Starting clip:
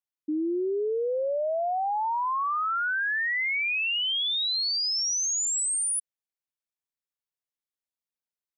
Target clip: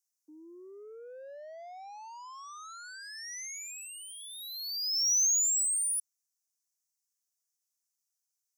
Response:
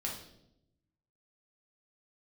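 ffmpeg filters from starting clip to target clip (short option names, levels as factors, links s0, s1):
-af "highpass=900,alimiter=level_in=2.82:limit=0.0631:level=0:latency=1:release=18,volume=0.355,asoftclip=type=tanh:threshold=0.0119,highshelf=f=4300:t=q:w=3:g=12.5,volume=0.562"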